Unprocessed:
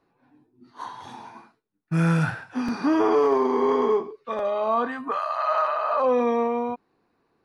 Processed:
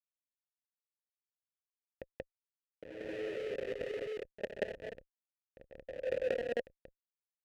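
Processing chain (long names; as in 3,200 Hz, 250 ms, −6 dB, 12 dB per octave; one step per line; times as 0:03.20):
drawn EQ curve 100 Hz 0 dB, 240 Hz −16 dB, 340 Hz +4 dB, 1,100 Hz −11 dB, 1,500 Hz −27 dB, 3,000 Hz −16 dB, 4,400 Hz +9 dB
comb and all-pass reverb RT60 0.72 s, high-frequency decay 0.6×, pre-delay 120 ms, DRR −8.5 dB
comparator with hysteresis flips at −12 dBFS
compressor whose output falls as the input rises −26 dBFS, ratio −0.5
formant filter e
low-shelf EQ 140 Hz +5 dB
backwards echo 183 ms −3.5 dB
one half of a high-frequency compander decoder only
level +4.5 dB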